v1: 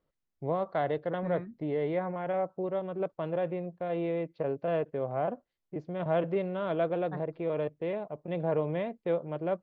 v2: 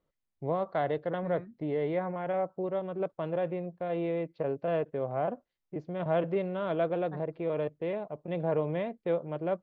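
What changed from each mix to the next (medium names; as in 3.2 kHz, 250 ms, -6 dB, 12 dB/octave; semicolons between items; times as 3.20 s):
second voice -4.5 dB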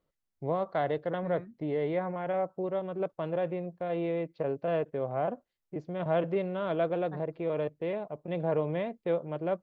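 master: remove distance through air 61 m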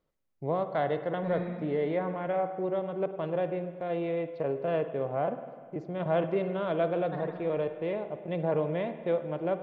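second voice: remove low-pass 2.4 kHz; reverb: on, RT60 1.7 s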